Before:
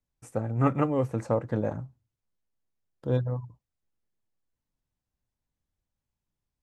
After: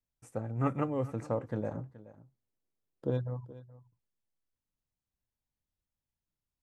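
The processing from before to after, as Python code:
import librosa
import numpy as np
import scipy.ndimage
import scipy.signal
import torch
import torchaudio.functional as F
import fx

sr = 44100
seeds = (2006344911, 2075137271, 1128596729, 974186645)

y = fx.peak_eq(x, sr, hz=360.0, db=9.0, octaves=2.0, at=(1.74, 3.1))
y = y + 10.0 ** (-18.0 / 20.0) * np.pad(y, (int(425 * sr / 1000.0), 0))[:len(y)]
y = y * librosa.db_to_amplitude(-6.5)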